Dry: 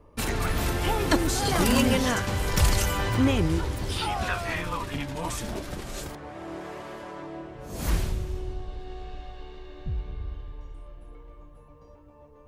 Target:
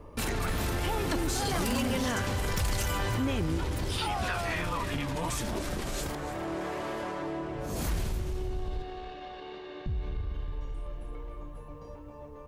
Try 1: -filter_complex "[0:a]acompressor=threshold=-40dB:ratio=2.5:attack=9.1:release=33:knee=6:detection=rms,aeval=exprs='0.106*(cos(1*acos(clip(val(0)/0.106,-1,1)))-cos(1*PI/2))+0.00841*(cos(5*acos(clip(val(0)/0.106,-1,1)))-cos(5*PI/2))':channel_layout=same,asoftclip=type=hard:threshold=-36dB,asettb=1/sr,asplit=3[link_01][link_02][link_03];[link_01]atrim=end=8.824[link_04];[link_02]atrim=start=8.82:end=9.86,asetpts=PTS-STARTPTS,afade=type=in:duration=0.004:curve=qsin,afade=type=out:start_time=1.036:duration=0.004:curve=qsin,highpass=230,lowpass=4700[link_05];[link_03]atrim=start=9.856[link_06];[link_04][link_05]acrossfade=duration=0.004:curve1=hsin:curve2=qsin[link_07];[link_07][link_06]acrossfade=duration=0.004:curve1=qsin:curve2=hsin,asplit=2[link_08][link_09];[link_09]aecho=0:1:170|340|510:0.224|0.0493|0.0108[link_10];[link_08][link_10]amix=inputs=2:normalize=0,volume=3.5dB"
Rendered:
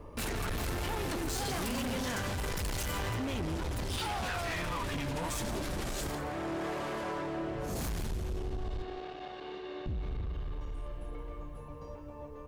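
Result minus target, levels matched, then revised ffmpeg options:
hard clipping: distortion +23 dB; echo 125 ms early
-filter_complex "[0:a]acompressor=threshold=-40dB:ratio=2.5:attack=9.1:release=33:knee=6:detection=rms,aeval=exprs='0.106*(cos(1*acos(clip(val(0)/0.106,-1,1)))-cos(1*PI/2))+0.00841*(cos(5*acos(clip(val(0)/0.106,-1,1)))-cos(5*PI/2))':channel_layout=same,asoftclip=type=hard:threshold=-26.5dB,asettb=1/sr,asplit=3[link_01][link_02][link_03];[link_01]atrim=end=8.824[link_04];[link_02]atrim=start=8.82:end=9.86,asetpts=PTS-STARTPTS,afade=type=in:duration=0.004:curve=qsin,afade=type=out:start_time=1.036:duration=0.004:curve=qsin,highpass=230,lowpass=4700[link_05];[link_03]atrim=start=9.856[link_06];[link_04][link_05]acrossfade=duration=0.004:curve1=hsin:curve2=qsin[link_07];[link_07][link_06]acrossfade=duration=0.004:curve1=qsin:curve2=hsin,asplit=2[link_08][link_09];[link_09]aecho=0:1:295|590|885:0.224|0.0493|0.0108[link_10];[link_08][link_10]amix=inputs=2:normalize=0,volume=3.5dB"

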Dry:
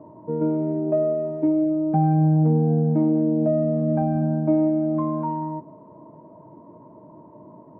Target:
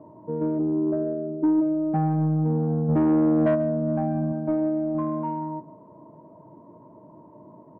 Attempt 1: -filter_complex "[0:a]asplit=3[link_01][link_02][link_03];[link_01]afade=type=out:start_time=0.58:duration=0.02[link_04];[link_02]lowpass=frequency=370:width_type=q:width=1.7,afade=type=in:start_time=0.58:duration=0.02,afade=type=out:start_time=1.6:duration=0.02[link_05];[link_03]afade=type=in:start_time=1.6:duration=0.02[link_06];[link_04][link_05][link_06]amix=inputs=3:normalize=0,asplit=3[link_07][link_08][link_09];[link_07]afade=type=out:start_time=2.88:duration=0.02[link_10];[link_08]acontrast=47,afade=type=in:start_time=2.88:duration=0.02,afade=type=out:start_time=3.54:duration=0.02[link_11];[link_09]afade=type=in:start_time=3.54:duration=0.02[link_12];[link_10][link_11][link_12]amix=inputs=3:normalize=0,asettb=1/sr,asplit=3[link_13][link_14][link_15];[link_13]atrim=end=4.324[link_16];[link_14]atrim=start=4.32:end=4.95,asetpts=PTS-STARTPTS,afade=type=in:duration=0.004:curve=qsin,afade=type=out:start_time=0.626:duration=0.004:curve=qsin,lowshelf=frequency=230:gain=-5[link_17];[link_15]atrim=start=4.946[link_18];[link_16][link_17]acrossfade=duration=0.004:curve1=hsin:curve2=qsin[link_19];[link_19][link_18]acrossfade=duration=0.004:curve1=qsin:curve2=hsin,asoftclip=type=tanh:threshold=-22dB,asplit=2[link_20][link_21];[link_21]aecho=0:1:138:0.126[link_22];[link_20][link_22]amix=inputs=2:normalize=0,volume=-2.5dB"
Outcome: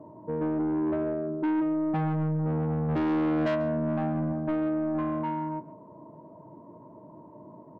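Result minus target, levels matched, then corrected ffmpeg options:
soft clipping: distortion +8 dB
-filter_complex "[0:a]asplit=3[link_01][link_02][link_03];[link_01]afade=type=out:start_time=0.58:duration=0.02[link_04];[link_02]lowpass=frequency=370:width_type=q:width=1.7,afade=type=in:start_time=0.58:duration=0.02,afade=type=out:start_time=1.6:duration=0.02[link_05];[link_03]afade=type=in:start_time=1.6:duration=0.02[link_06];[link_04][link_05][link_06]amix=inputs=3:normalize=0,asplit=3[link_07][link_08][link_09];[link_07]afade=type=out:start_time=2.88:duration=0.02[link_10];[link_08]acontrast=47,afade=type=in:start_time=2.88:duration=0.02,afade=type=out:start_time=3.54:duration=0.02[link_11];[link_09]afade=type=in:start_time=3.54:duration=0.02[link_12];[link_10][link_11][link_12]amix=inputs=3:normalize=0,asettb=1/sr,asplit=3[link_13][link_14][link_15];[link_13]atrim=end=4.324[link_16];[link_14]atrim=start=4.32:end=4.95,asetpts=PTS-STARTPTS,afade=type=in:duration=0.004:curve=qsin,afade=type=out:start_time=0.626:duration=0.004:curve=qsin,lowshelf=frequency=230:gain=-5[link_17];[link_15]atrim=start=4.946[link_18];[link_16][link_17]acrossfade=duration=0.004:curve1=hsin:curve2=qsin[link_19];[link_19][link_18]acrossfade=duration=0.004:curve1=qsin:curve2=hsin,asoftclip=type=tanh:threshold=-13dB,asplit=2[link_20][link_21];[link_21]aecho=0:1:138:0.126[link_22];[link_20][link_22]amix=inputs=2:normalize=0,volume=-2.5dB"

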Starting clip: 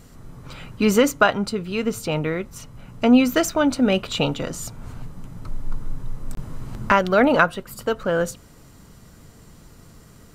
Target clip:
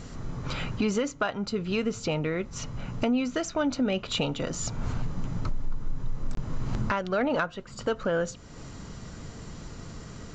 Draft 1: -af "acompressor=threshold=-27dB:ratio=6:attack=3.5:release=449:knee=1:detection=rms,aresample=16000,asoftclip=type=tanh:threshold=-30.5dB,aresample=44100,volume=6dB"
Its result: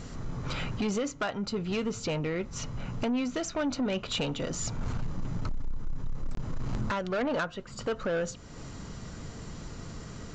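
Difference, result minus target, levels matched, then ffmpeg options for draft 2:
soft clipping: distortion +13 dB
-af "acompressor=threshold=-27dB:ratio=6:attack=3.5:release=449:knee=1:detection=rms,aresample=16000,asoftclip=type=tanh:threshold=-20.5dB,aresample=44100,volume=6dB"

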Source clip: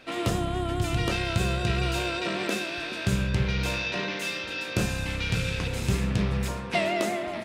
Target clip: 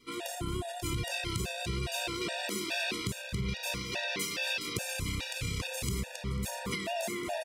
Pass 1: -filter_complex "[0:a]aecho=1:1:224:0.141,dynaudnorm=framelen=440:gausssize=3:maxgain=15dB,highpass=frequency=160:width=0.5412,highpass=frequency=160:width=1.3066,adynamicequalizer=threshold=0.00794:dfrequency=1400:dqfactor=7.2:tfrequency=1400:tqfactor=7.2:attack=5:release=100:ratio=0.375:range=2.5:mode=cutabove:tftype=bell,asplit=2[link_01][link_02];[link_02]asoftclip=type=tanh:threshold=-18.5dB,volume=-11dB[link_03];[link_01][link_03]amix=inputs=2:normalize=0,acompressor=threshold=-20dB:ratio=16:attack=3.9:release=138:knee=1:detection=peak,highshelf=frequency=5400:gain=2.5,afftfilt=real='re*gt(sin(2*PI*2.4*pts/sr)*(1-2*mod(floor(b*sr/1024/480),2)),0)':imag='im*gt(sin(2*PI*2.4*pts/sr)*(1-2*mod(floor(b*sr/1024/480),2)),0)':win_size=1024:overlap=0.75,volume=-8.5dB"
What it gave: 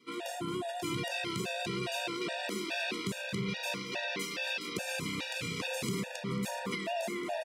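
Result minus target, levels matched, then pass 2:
125 Hz band −4.0 dB; 8,000 Hz band −3.5 dB
-filter_complex "[0:a]aecho=1:1:224:0.141,dynaudnorm=framelen=440:gausssize=3:maxgain=15dB,adynamicequalizer=threshold=0.00794:dfrequency=1400:dqfactor=7.2:tfrequency=1400:tqfactor=7.2:attack=5:release=100:ratio=0.375:range=2.5:mode=cutabove:tftype=bell,asplit=2[link_01][link_02];[link_02]asoftclip=type=tanh:threshold=-18.5dB,volume=-11dB[link_03];[link_01][link_03]amix=inputs=2:normalize=0,acompressor=threshold=-20dB:ratio=16:attack=3.9:release=138:knee=1:detection=peak,highshelf=frequency=5400:gain=12.5,afftfilt=real='re*gt(sin(2*PI*2.4*pts/sr)*(1-2*mod(floor(b*sr/1024/480),2)),0)':imag='im*gt(sin(2*PI*2.4*pts/sr)*(1-2*mod(floor(b*sr/1024/480),2)),0)':win_size=1024:overlap=0.75,volume=-8.5dB"

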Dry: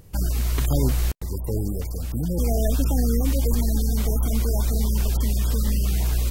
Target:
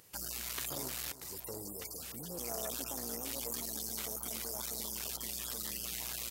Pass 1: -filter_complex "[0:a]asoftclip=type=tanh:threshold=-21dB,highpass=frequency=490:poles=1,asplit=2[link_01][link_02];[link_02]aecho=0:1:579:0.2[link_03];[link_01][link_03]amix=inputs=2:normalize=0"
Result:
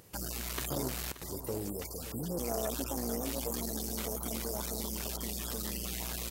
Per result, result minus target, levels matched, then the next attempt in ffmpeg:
echo 254 ms late; 500 Hz band +5.5 dB
-filter_complex "[0:a]asoftclip=type=tanh:threshold=-21dB,highpass=frequency=490:poles=1,asplit=2[link_01][link_02];[link_02]aecho=0:1:325:0.2[link_03];[link_01][link_03]amix=inputs=2:normalize=0"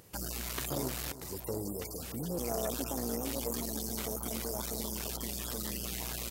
500 Hz band +6.0 dB
-filter_complex "[0:a]asoftclip=type=tanh:threshold=-21dB,highpass=frequency=1700:poles=1,asplit=2[link_01][link_02];[link_02]aecho=0:1:325:0.2[link_03];[link_01][link_03]amix=inputs=2:normalize=0"

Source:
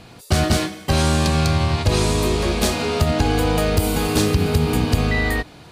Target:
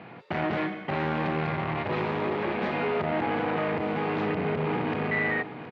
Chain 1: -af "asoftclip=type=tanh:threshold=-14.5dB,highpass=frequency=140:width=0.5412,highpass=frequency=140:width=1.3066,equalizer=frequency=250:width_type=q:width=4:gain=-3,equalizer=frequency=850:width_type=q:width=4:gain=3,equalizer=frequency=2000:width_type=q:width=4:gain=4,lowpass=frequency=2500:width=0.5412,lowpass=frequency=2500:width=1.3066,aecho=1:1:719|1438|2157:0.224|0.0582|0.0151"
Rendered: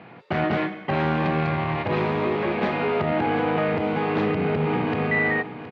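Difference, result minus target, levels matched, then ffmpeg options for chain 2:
soft clipping: distortion −8 dB
-af "asoftclip=type=tanh:threshold=-23.5dB,highpass=frequency=140:width=0.5412,highpass=frequency=140:width=1.3066,equalizer=frequency=250:width_type=q:width=4:gain=-3,equalizer=frequency=850:width_type=q:width=4:gain=3,equalizer=frequency=2000:width_type=q:width=4:gain=4,lowpass=frequency=2500:width=0.5412,lowpass=frequency=2500:width=1.3066,aecho=1:1:719|1438|2157:0.224|0.0582|0.0151"

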